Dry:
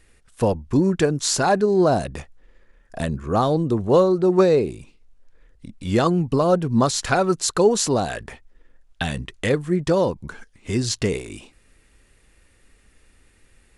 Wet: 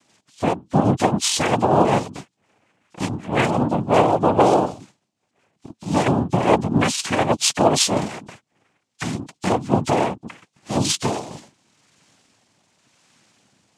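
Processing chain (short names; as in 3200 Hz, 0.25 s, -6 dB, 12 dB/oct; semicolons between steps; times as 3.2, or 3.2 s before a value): nonlinear frequency compression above 3600 Hz 4:1; rotary speaker horn 5.5 Hz, later 0.9 Hz, at 7.09; noise vocoder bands 4; gain +2.5 dB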